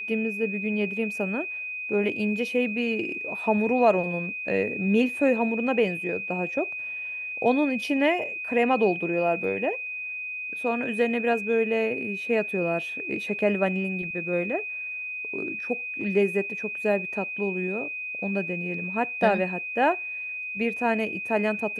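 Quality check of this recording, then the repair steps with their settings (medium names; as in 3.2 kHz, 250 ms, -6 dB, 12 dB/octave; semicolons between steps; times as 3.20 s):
whine 2.5 kHz -31 dBFS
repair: band-stop 2.5 kHz, Q 30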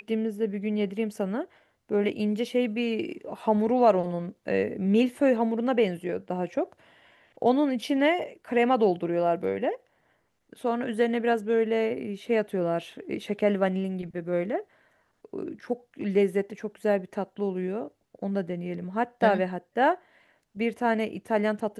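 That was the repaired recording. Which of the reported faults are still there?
nothing left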